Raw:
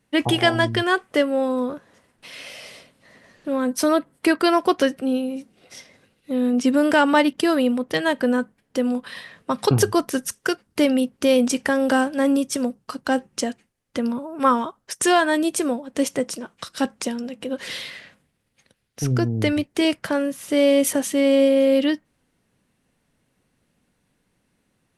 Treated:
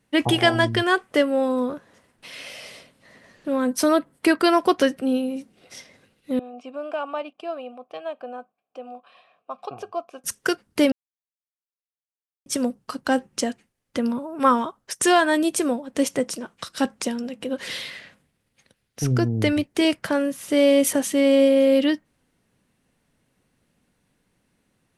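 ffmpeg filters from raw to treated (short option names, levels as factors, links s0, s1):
-filter_complex "[0:a]asettb=1/sr,asplit=3[s0][s1][s2];[s0]atrim=end=6.394[s3];[s1]atrim=start=6.39:end=10.24,asetpts=PTS-STARTPTS,afade=t=in:d=0.004:c=qsin,afade=t=out:st=3.846:d=0.004:c=qsin,asplit=3[s4][s5][s6];[s4]bandpass=f=730:t=q:w=8,volume=1[s7];[s5]bandpass=f=1090:t=q:w=8,volume=0.501[s8];[s6]bandpass=f=2440:t=q:w=8,volume=0.355[s9];[s7][s8][s9]amix=inputs=3:normalize=0[s10];[s2]atrim=start=10.236[s11];[s3][s10]acrossfade=d=0.004:c1=hsin:c2=qsin[s12];[s12][s11]acrossfade=d=0.004:c1=qsin:c2=hsin,asplit=3[s13][s14][s15];[s13]atrim=end=10.92,asetpts=PTS-STARTPTS,afade=t=out:st=10.916:d=0.004:c=hsin[s16];[s14]atrim=start=10.92:end=12.46,asetpts=PTS-STARTPTS,volume=0[s17];[s15]atrim=start=12.46,asetpts=PTS-STARTPTS,afade=t=in:d=0.004:c=hsin[s18];[s16][s17][s18]concat=n=3:v=0:a=1"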